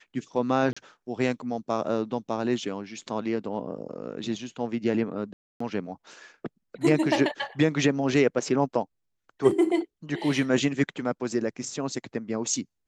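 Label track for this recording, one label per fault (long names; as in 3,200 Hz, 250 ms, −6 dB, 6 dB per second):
0.730000	0.770000	drop-out 35 ms
5.330000	5.600000	drop-out 274 ms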